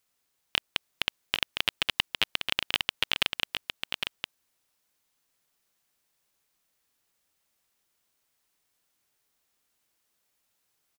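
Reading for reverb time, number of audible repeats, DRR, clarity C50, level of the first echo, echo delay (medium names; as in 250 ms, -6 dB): no reverb, 1, no reverb, no reverb, -6.0 dB, 808 ms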